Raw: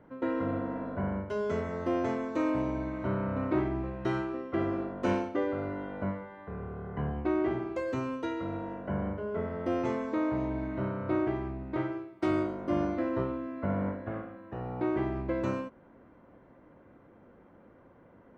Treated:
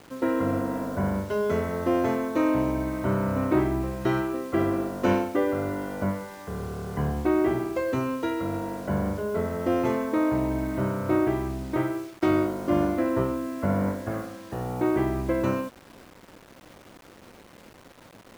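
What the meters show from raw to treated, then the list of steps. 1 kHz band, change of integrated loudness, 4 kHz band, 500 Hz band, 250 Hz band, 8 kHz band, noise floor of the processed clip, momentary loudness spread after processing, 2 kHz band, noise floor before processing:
+6.0 dB, +6.0 dB, +7.5 dB, +6.0 dB, +6.0 dB, can't be measured, −51 dBFS, 7 LU, +6.0 dB, −58 dBFS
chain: bit reduction 9 bits
level +6 dB

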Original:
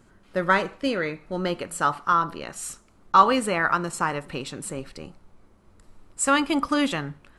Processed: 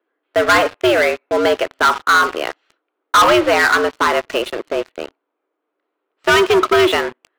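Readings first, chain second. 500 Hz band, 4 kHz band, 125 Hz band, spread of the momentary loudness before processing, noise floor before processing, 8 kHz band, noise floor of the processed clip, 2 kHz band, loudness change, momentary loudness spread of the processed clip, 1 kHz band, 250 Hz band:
+13.5 dB, +12.5 dB, 0.0 dB, 14 LU, −57 dBFS, +3.0 dB, −77 dBFS, +11.5 dB, +9.0 dB, 11 LU, +6.5 dB, +4.5 dB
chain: single-sideband voice off tune +97 Hz 220–3,500 Hz
leveller curve on the samples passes 5
level −3.5 dB

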